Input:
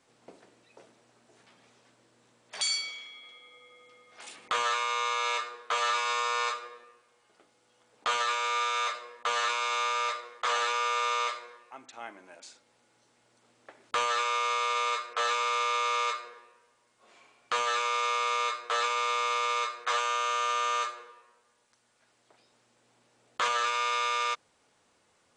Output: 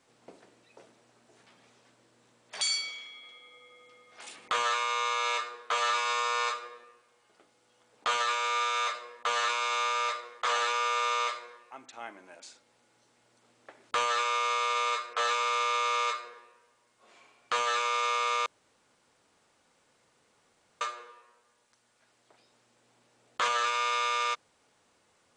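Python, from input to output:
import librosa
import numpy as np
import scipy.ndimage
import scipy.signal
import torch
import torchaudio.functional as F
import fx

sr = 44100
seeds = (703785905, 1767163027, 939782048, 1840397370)

y = fx.edit(x, sr, fx.room_tone_fill(start_s=18.46, length_s=2.35), tone=tone)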